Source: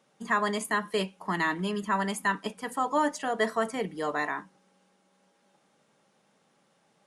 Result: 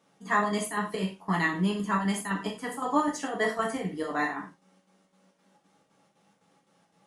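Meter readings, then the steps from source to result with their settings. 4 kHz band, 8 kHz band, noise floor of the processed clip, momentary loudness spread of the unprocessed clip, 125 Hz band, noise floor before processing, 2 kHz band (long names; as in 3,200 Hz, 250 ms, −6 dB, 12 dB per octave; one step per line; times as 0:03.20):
−1.5 dB, +1.0 dB, −70 dBFS, 5 LU, +5.0 dB, −69 dBFS, −0.5 dB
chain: parametric band 100 Hz +6.5 dB 1.9 octaves
square-wave tremolo 3.9 Hz, depth 60%, duty 70%
reverb whose tail is shaped and stops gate 130 ms falling, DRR −2 dB
level −3 dB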